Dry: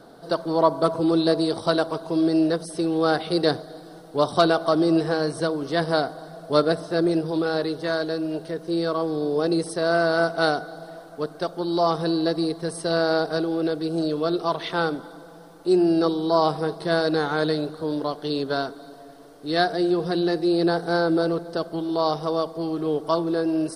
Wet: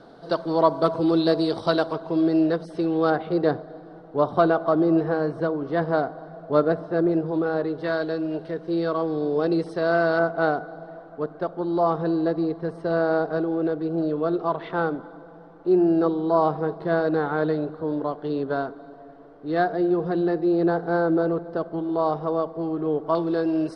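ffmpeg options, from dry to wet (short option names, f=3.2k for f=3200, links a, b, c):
-af "asetnsamples=n=441:p=0,asendcmd='1.93 lowpass f 2800;3.1 lowpass f 1600;7.78 lowpass f 2800;10.19 lowpass f 1600;23.15 lowpass f 3600',lowpass=4.5k"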